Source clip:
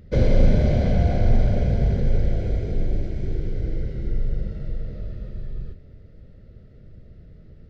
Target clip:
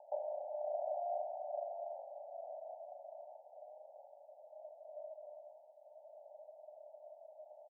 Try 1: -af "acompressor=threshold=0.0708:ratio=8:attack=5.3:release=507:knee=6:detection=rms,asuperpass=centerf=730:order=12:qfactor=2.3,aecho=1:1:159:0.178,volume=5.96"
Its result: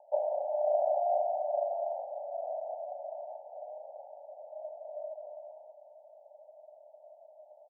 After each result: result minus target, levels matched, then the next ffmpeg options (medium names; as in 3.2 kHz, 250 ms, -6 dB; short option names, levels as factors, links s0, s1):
echo 73 ms late; compression: peak gain reduction -10.5 dB
-af "acompressor=threshold=0.0708:ratio=8:attack=5.3:release=507:knee=6:detection=rms,asuperpass=centerf=730:order=12:qfactor=2.3,aecho=1:1:86:0.178,volume=5.96"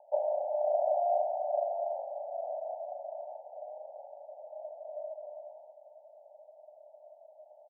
compression: peak gain reduction -10.5 dB
-af "acompressor=threshold=0.0178:ratio=8:attack=5.3:release=507:knee=6:detection=rms,asuperpass=centerf=730:order=12:qfactor=2.3,aecho=1:1:86:0.178,volume=5.96"